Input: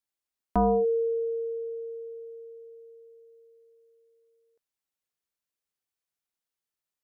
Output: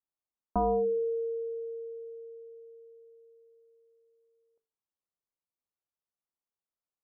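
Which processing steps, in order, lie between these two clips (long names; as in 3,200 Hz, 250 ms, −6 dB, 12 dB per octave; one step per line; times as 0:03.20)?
Butterworth low-pass 1,300 Hz 36 dB per octave
mains-hum notches 50/100/150/200/250/300/350/400/450 Hz
level −3 dB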